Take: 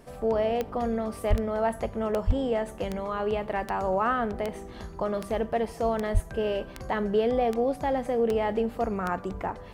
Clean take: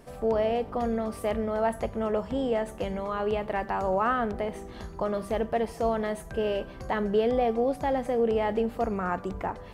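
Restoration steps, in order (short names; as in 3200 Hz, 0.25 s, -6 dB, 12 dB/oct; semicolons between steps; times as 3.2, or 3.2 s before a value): de-click; 1.29–1.41 HPF 140 Hz 24 dB/oct; 2.26–2.38 HPF 140 Hz 24 dB/oct; 6.13–6.25 HPF 140 Hz 24 dB/oct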